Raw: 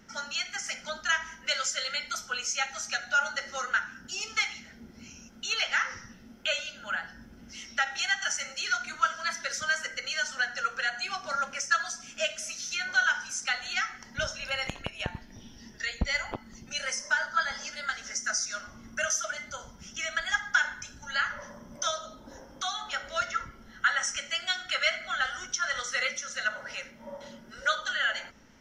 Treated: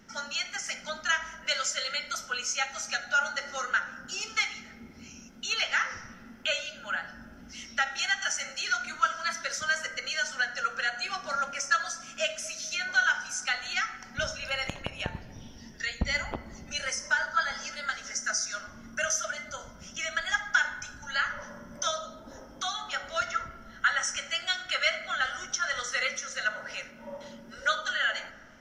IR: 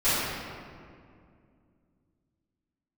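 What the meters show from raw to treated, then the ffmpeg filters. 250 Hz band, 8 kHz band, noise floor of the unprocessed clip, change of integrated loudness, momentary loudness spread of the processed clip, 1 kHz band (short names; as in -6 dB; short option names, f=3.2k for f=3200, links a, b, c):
+1.0 dB, 0.0 dB, -52 dBFS, 0.0 dB, 14 LU, +0.5 dB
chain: -filter_complex "[0:a]asplit=2[a][b];[1:a]atrim=start_sample=2205,lowpass=f=1k:p=1[c];[b][c]afir=irnorm=-1:irlink=0,volume=-26dB[d];[a][d]amix=inputs=2:normalize=0"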